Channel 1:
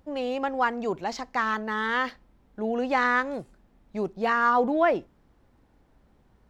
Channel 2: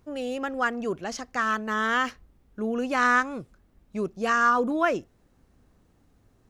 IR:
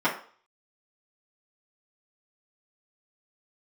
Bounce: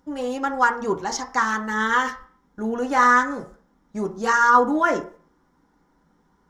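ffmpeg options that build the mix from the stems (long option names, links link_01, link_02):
-filter_complex "[0:a]volume=-5dB,asplit=3[link_01][link_02][link_03];[link_02]volume=-4.5dB[link_04];[1:a]aphaser=in_gain=1:out_gain=1:delay=3.7:decay=0.49:speed=1.1:type=sinusoidal,volume=-1dB[link_05];[link_03]apad=whole_len=286266[link_06];[link_05][link_06]sidechaingate=range=-33dB:threshold=-53dB:ratio=16:detection=peak[link_07];[2:a]atrim=start_sample=2205[link_08];[link_04][link_08]afir=irnorm=-1:irlink=0[link_09];[link_01][link_07][link_09]amix=inputs=3:normalize=0,equalizer=frequency=250:width_type=o:width=0.67:gain=-7,equalizer=frequency=630:width_type=o:width=0.67:gain=-11,equalizer=frequency=2500:width_type=o:width=0.67:gain=-10,equalizer=frequency=6300:width_type=o:width=0.67:gain=8"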